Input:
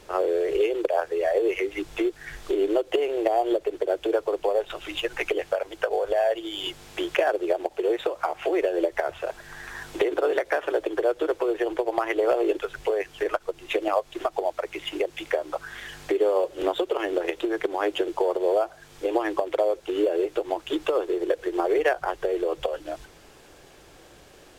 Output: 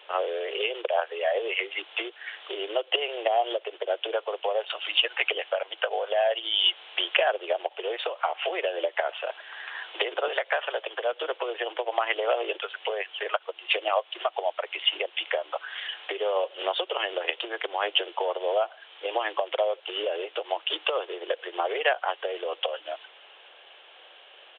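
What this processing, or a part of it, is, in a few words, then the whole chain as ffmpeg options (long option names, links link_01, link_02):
musical greeting card: -filter_complex "[0:a]aresample=8000,aresample=44100,highpass=frequency=550:width=0.5412,highpass=frequency=550:width=1.3066,equalizer=frequency=3000:width_type=o:width=0.48:gain=11.5,asettb=1/sr,asplit=3[link_01][link_02][link_03];[link_01]atrim=end=10.284[link_04];[link_02]atrim=start=10.28:end=11.13,asetpts=PTS-STARTPTS,afade=type=in:duration=0.004:curve=qsin,afade=type=out:start_time=0.846:duration=0.004:curve=qsin,highpass=460[link_05];[link_03]atrim=start=11.126[link_06];[link_04][link_05]acrossfade=duration=0.004:curve1=hsin:curve2=qsin[link_07];[link_07][link_06]acrossfade=duration=0.004:curve1=qsin:curve2=hsin"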